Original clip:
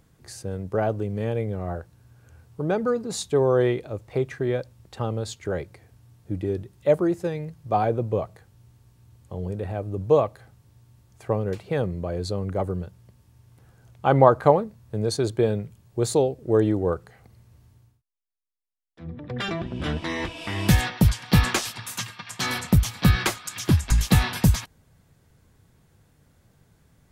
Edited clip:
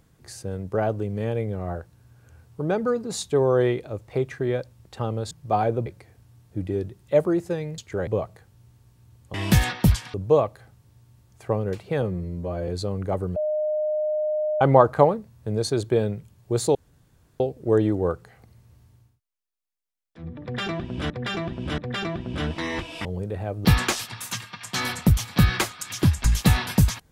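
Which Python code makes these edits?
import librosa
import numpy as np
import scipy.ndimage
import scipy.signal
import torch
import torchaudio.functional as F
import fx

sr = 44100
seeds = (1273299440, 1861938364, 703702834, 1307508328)

y = fx.edit(x, sr, fx.swap(start_s=5.31, length_s=0.29, other_s=7.52, other_length_s=0.55),
    fx.swap(start_s=9.34, length_s=0.6, other_s=20.51, other_length_s=0.8),
    fx.stretch_span(start_s=11.82, length_s=0.33, factor=2.0),
    fx.bleep(start_s=12.83, length_s=1.25, hz=611.0, db=-21.5),
    fx.insert_room_tone(at_s=16.22, length_s=0.65),
    fx.repeat(start_s=19.24, length_s=0.68, count=3), tone=tone)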